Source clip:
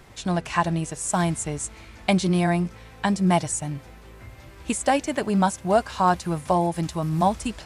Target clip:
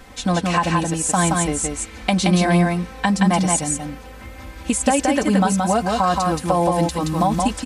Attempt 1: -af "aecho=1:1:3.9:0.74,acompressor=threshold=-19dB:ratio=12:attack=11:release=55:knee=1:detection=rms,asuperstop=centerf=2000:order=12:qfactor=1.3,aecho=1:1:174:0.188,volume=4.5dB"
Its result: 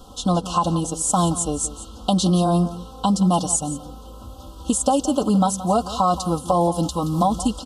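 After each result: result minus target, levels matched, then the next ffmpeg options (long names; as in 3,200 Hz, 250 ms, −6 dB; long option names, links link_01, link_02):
2,000 Hz band −19.5 dB; echo-to-direct −11.5 dB
-af "aecho=1:1:3.9:0.74,acompressor=threshold=-19dB:ratio=12:attack=11:release=55:knee=1:detection=rms,aecho=1:1:174:0.188,volume=4.5dB"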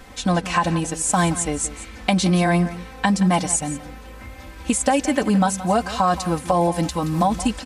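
echo-to-direct −11.5 dB
-af "aecho=1:1:3.9:0.74,acompressor=threshold=-19dB:ratio=12:attack=11:release=55:knee=1:detection=rms,aecho=1:1:174:0.708,volume=4.5dB"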